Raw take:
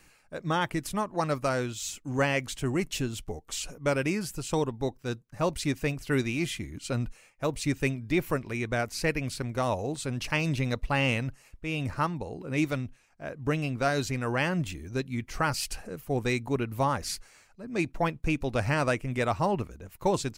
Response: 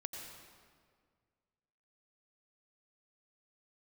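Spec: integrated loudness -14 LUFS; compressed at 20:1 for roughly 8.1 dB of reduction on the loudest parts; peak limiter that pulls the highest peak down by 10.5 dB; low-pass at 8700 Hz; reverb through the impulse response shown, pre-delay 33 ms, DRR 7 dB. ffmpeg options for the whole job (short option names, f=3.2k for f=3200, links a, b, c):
-filter_complex "[0:a]lowpass=8.7k,acompressor=threshold=-29dB:ratio=20,alimiter=level_in=5dB:limit=-24dB:level=0:latency=1,volume=-5dB,asplit=2[a][b];[1:a]atrim=start_sample=2205,adelay=33[c];[b][c]afir=irnorm=-1:irlink=0,volume=-5.5dB[d];[a][d]amix=inputs=2:normalize=0,volume=25dB"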